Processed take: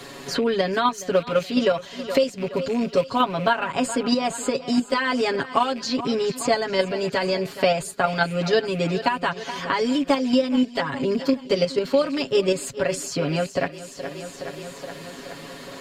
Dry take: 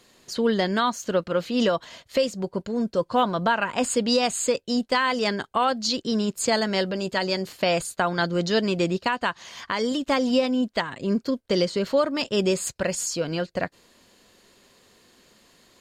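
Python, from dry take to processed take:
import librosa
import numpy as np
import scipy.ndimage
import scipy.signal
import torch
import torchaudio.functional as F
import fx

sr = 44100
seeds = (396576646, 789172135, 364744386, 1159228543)

p1 = fx.rattle_buzz(x, sr, strikes_db=-38.0, level_db=-31.0)
p2 = fx.high_shelf(p1, sr, hz=2100.0, db=-3.0)
p3 = p2 + 0.99 * np.pad(p2, (int(7.2 * sr / 1000.0), 0))[:len(p2)]
p4 = fx.level_steps(p3, sr, step_db=18)
p5 = p3 + (p4 * 10.0 ** (1.5 / 20.0))
p6 = fx.notch(p5, sr, hz=6700.0, q=21.0)
p7 = p6 + fx.echo_feedback(p6, sr, ms=420, feedback_pct=56, wet_db=-18.0, dry=0)
p8 = fx.band_squash(p7, sr, depth_pct=70)
y = p8 * 10.0 ** (-5.0 / 20.0)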